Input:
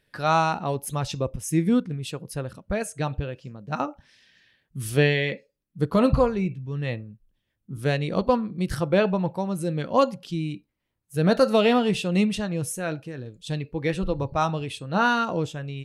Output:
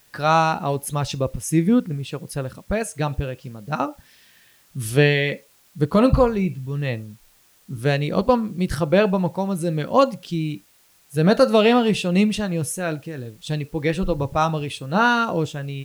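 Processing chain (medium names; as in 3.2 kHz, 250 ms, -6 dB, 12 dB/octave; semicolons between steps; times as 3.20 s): 1.67–2.12 s: low-pass 2.7 kHz 6 dB/octave; in parallel at -10.5 dB: word length cut 8-bit, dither triangular; on the sum: trim +1.5 dB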